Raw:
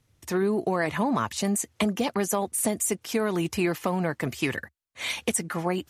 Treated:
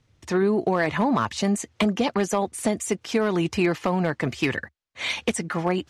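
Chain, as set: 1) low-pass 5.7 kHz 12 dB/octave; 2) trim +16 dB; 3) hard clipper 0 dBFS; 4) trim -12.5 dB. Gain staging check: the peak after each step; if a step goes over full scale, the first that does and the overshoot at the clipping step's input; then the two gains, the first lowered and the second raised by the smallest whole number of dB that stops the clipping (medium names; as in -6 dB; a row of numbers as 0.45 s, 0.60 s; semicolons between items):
-11.5 dBFS, +4.5 dBFS, 0.0 dBFS, -12.5 dBFS; step 2, 4.5 dB; step 2 +11 dB, step 4 -7.5 dB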